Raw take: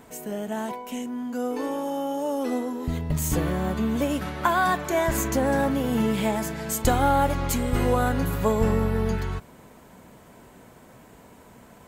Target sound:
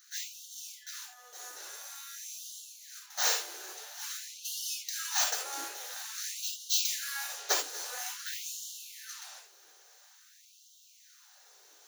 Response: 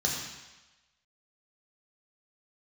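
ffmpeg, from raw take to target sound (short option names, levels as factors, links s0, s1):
-filter_complex "[0:a]aderivative,aeval=exprs='abs(val(0))':c=same[s0];[1:a]atrim=start_sample=2205,atrim=end_sample=3969[s1];[s0][s1]afir=irnorm=-1:irlink=0,afftfilt=real='re*gte(b*sr/1024,300*pow(2800/300,0.5+0.5*sin(2*PI*0.49*pts/sr)))':imag='im*gte(b*sr/1024,300*pow(2800/300,0.5+0.5*sin(2*PI*0.49*pts/sr)))':win_size=1024:overlap=0.75"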